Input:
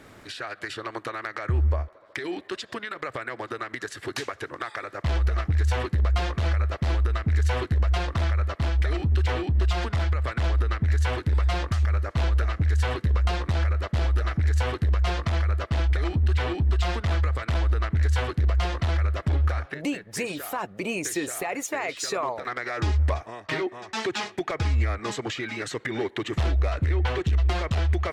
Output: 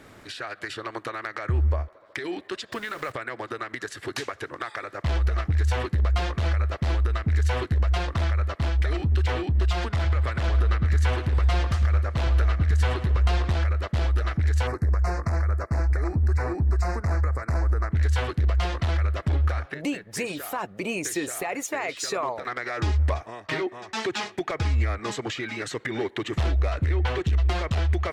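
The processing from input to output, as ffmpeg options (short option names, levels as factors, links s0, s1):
-filter_complex "[0:a]asettb=1/sr,asplit=3[s0][s1][s2];[s0]atrim=end=2.724[s3];[s1]atrim=start=2.72:end=3.12,asetpts=PTS-STARTPTS,afade=t=in:d=0.004:c=qsin,afade=t=out:st=0.396:d=0.004:c=qsin,aeval=exprs='val(0)+0.5*0.00944*sgn(val(0))':c=same[s4];[s2]atrim=start=3.116[s5];[s3][s4]acrossfade=d=0.004:c1=hsin:c2=qsin[s6];[s6][s5]acrossfade=d=0.004:c1=qsin:c2=hsin,asettb=1/sr,asplit=3[s7][s8][s9];[s7]atrim=end=9.914[s10];[s8]atrim=start=9.91:end=13.56,asetpts=PTS-STARTPTS,afade=t=in:d=0.004:c=qsin,afade=t=out:st=3.646:d=0.004:c=qsin,asplit=2[s11][s12];[s12]adelay=107,lowpass=f=4400:p=1,volume=0.316,asplit=2[s13][s14];[s14]adelay=107,lowpass=f=4400:p=1,volume=0.48,asplit=2[s15][s16];[s16]adelay=107,lowpass=f=4400:p=1,volume=0.48,asplit=2[s17][s18];[s18]adelay=107,lowpass=f=4400:p=1,volume=0.48,asplit=2[s19][s20];[s20]adelay=107,lowpass=f=4400:p=1,volume=0.48[s21];[s11][s13][s15][s17][s19][s21]amix=inputs=6:normalize=0,atrim=end_sample=160965[s22];[s9]atrim=start=13.556[s23];[s10][s22]acrossfade=d=0.004:c1=hsin:c2=qsin[s24];[s24][s23]acrossfade=d=0.004:c1=qsin:c2=hsin,asettb=1/sr,asplit=3[s25][s26][s27];[s25]atrim=end=14.674[s28];[s26]atrim=start=14.67:end=17.92,asetpts=PTS-STARTPTS,afade=t=in:d=0.004:c=qsin,afade=t=out:st=3.246:d=0.004:c=qsin,asuperstop=centerf=3200:order=4:qfactor=0.96[s29];[s27]atrim=start=17.916[s30];[s28][s29]acrossfade=d=0.004:c1=hsin:c2=qsin[s31];[s31][s30]acrossfade=d=0.004:c1=qsin:c2=hsin"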